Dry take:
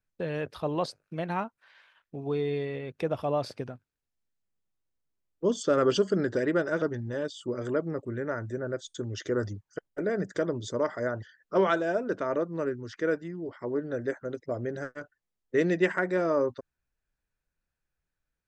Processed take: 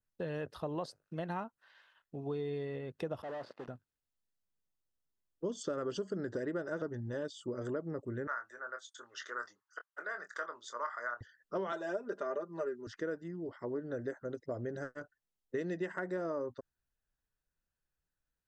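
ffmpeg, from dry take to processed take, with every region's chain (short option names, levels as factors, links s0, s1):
-filter_complex "[0:a]asettb=1/sr,asplit=3[s0][s1][s2];[s0]atrim=end=3.224[s3];[s1]atrim=start=3.22:end=3.68,asetpts=PTS-STARTPTS,afade=t=in:d=0.004:c=qsin,afade=t=out:st=0.456:d=0.004:c=qsin,acrusher=bits=8:dc=4:mix=0:aa=0.000001,asoftclip=type=hard:threshold=0.02,highpass=250,lowpass=2500[s4];[s2]atrim=start=3.676[s5];[s3][s4]acrossfade=d=0.004:c1=hsin:c2=qsin[s6];[s6][s5]acrossfade=d=0.004:c1=qsin:c2=hsin,asettb=1/sr,asplit=3[s7][s8][s9];[s7]atrim=end=8.274[s10];[s8]atrim=start=8.27:end=11.21,asetpts=PTS-STARTPTS,afade=t=in:d=0.004:c=qsin,afade=t=out:st=2.936:d=0.004:c=qsin,highpass=f=1200:t=q:w=2.9,highshelf=f=4200:g=-5,asplit=2[s11][s12];[s12]adelay=25,volume=0.376[s13];[s11][s13]amix=inputs=2:normalize=0,atrim=end_sample=129654[s14];[s9]atrim=start=11.206[s15];[s10][s14]acrossfade=d=0.004:c1=hsin:c2=qsin[s16];[s16][s15]acrossfade=d=0.004:c1=qsin:c2=hsin,asettb=1/sr,asplit=3[s17][s18][s19];[s17]atrim=end=11.724[s20];[s18]atrim=start=11.72:end=12.87,asetpts=PTS-STARTPTS,afade=t=in:d=0.004:c=qsin,afade=t=out:st=1.146:d=0.004:c=qsin,highpass=320,aecho=1:1:5:0.95,atrim=end_sample=50715[s21];[s19]atrim=start=12.866[s22];[s20][s21]acrossfade=d=0.004:c1=hsin:c2=qsin[s23];[s23][s22]acrossfade=d=0.004:c1=qsin:c2=hsin,bandreject=f=2300:w=5.8,adynamicequalizer=threshold=0.00282:dfrequency=3200:dqfactor=1:tfrequency=3200:tqfactor=1:attack=5:release=100:ratio=0.375:range=2.5:mode=cutabove:tftype=bell,acompressor=threshold=0.0355:ratio=6,volume=0.596"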